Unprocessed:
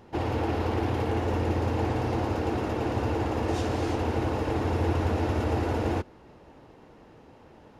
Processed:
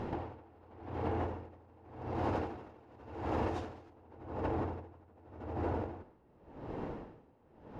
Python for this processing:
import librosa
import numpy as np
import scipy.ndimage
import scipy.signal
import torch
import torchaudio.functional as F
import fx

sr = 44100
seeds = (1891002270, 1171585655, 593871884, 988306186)

y = fx.dynamic_eq(x, sr, hz=940.0, q=0.79, threshold_db=-42.0, ratio=4.0, max_db=4)
y = fx.over_compress(y, sr, threshold_db=-36.0, ratio=-1.0)
y = fx.lowpass(y, sr, hz=fx.steps((0.0, 1600.0), (2.15, 3200.0), (3.9, 1100.0)), slope=6)
y = y * 10.0 ** (-27 * (0.5 - 0.5 * np.cos(2.0 * np.pi * 0.88 * np.arange(len(y)) / sr)) / 20.0)
y = y * 10.0 ** (3.5 / 20.0)